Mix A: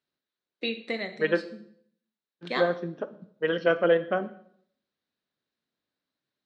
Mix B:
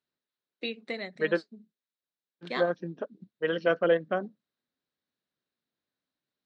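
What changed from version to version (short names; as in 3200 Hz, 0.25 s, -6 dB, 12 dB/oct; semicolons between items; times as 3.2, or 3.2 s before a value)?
reverb: off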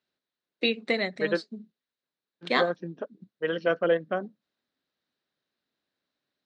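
first voice +9.0 dB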